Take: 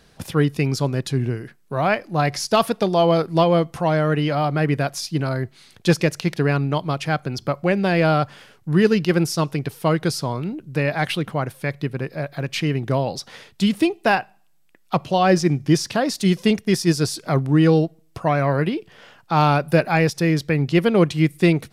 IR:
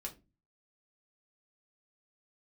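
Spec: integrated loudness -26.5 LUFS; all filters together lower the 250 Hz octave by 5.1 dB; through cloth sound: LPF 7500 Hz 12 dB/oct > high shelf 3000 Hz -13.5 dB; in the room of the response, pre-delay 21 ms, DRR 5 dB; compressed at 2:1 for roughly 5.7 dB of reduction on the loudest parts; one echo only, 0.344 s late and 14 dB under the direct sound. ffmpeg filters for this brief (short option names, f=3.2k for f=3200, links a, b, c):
-filter_complex "[0:a]equalizer=f=250:t=o:g=-8.5,acompressor=threshold=-24dB:ratio=2,aecho=1:1:344:0.2,asplit=2[a][b];[1:a]atrim=start_sample=2205,adelay=21[c];[b][c]afir=irnorm=-1:irlink=0,volume=-2.5dB[d];[a][d]amix=inputs=2:normalize=0,lowpass=7.5k,highshelf=f=3k:g=-13.5"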